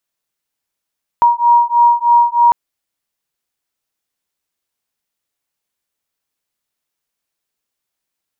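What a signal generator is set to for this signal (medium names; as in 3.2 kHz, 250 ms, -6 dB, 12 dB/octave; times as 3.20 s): beating tones 948 Hz, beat 3.2 Hz, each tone -11 dBFS 1.30 s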